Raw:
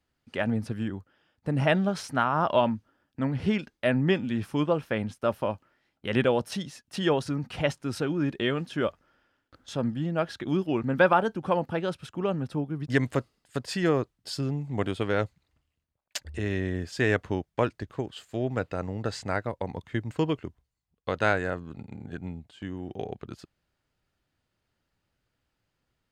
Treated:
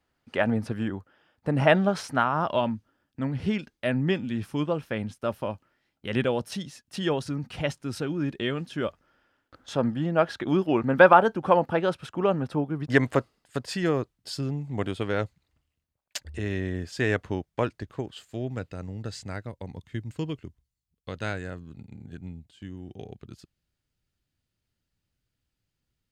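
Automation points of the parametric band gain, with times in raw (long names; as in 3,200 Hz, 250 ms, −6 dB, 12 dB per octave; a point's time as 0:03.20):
parametric band 870 Hz 3 octaves
0:02.00 +5.5 dB
0:02.50 −3 dB
0:08.81 −3 dB
0:09.73 +6.5 dB
0:13.12 +6.5 dB
0:13.84 −1.5 dB
0:18.11 −1.5 dB
0:18.75 −11 dB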